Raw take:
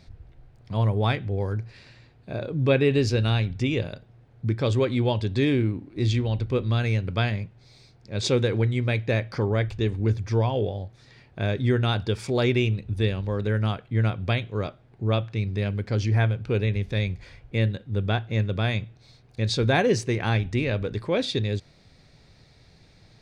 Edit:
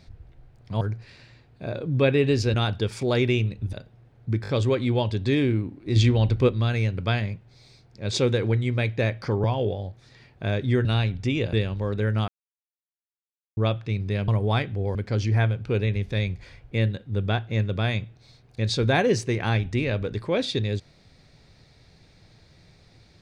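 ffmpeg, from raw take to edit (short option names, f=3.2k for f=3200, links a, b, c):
-filter_complex "[0:a]asplit=16[a][b][c][d][e][f][g][h][i][j][k][l][m][n][o][p];[a]atrim=end=0.812[q];[b]atrim=start=1.478:end=3.212[r];[c]atrim=start=11.808:end=13.002[s];[d]atrim=start=3.888:end=4.602[t];[e]atrim=start=4.578:end=4.602[u];[f]atrim=start=4.578:end=4.602[v];[g]atrim=start=4.578:end=6.062[w];[h]atrim=start=6.058:end=6.592,asetpts=PTS-STARTPTS,volume=5dB[x];[i]atrim=start=6.588:end=9.542[y];[j]atrim=start=10.398:end=11.812[z];[k]atrim=start=3.208:end=3.892[aa];[l]atrim=start=12.998:end=13.75,asetpts=PTS-STARTPTS,afade=t=out:st=0.748:d=0.004:c=hsin[ab];[m]atrim=start=13.75:end=15.04,asetpts=PTS-STARTPTS,volume=0[ac];[n]atrim=start=15.04:end=15.752,asetpts=PTS-STARTPTS,afade=t=in:d=0.004:c=hsin[ad];[o]atrim=start=0.808:end=1.482[ae];[p]atrim=start=15.748[af];[q][r]acrossfade=d=0.004:c1=hsin:c2=hsin[ag];[ag][s]acrossfade=d=0.004:c1=hsin:c2=hsin[ah];[ah][t]acrossfade=d=0.004:c1=hsin:c2=hsin[ai];[ai][u]acrossfade=d=0.004:c1=hsin:c2=hsin[aj];[aj][v]acrossfade=d=0.004:c1=hsin:c2=hsin[ak];[ak][w]acrossfade=d=0.004:c1=hsin:c2=hsin[al];[al][x]acrossfade=d=0.004:c1=hsin:c2=hsin[am];[am][y]acrossfade=d=0.004:c1=hsin:c2=hsin[an];[an][z]acrossfade=d=0.004:c1=hsin:c2=hsin[ao];[ao][aa]acrossfade=d=0.004:c1=hsin:c2=hsin[ap];[ab][ac][ad]concat=n=3:v=0:a=1[aq];[ap][aq]acrossfade=d=0.004:c1=hsin:c2=hsin[ar];[ar][ae]acrossfade=d=0.004:c1=hsin:c2=hsin[as];[as][af]acrossfade=d=0.004:c1=hsin:c2=hsin"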